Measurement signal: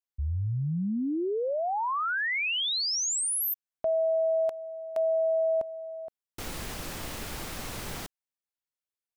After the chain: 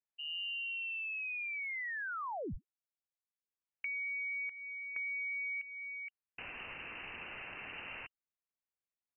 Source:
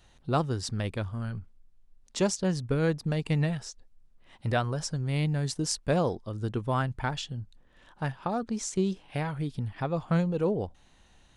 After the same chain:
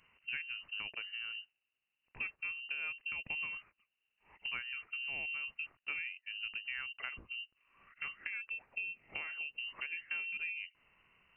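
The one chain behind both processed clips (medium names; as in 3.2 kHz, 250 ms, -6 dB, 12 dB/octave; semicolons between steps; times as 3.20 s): high-pass 94 Hz 24 dB/octave; compression 3:1, threshold -36 dBFS; frequency inversion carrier 2.9 kHz; trim -4.5 dB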